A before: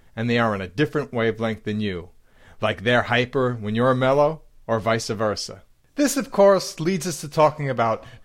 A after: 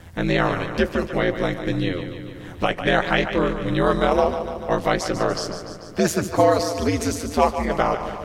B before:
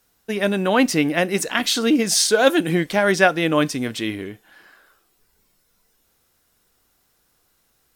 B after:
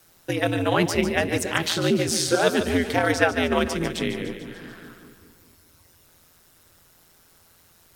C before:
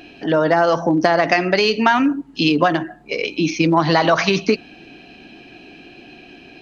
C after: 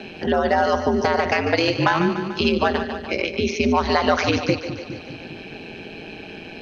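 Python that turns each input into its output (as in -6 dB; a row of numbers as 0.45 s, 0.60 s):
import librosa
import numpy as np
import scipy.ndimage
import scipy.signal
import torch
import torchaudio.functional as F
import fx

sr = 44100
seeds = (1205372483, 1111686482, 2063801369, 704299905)

y = x * np.sin(2.0 * np.pi * 85.0 * np.arange(len(x)) / sr)
y = fx.echo_split(y, sr, split_hz=360.0, low_ms=204, high_ms=146, feedback_pct=52, wet_db=-10.5)
y = fx.band_squash(y, sr, depth_pct=40)
y = y * 10.0 ** (-3 / 20.0) / np.max(np.abs(y))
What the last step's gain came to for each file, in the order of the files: +2.5 dB, -1.0 dB, -0.5 dB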